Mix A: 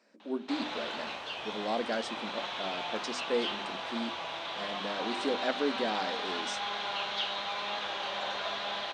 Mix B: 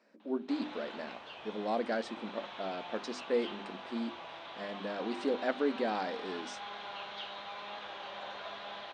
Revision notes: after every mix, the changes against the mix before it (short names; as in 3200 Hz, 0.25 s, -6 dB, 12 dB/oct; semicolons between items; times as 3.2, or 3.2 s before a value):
background -7.0 dB; master: add high shelf 4500 Hz -11 dB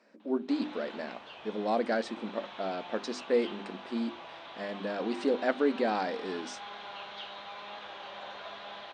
speech +4.0 dB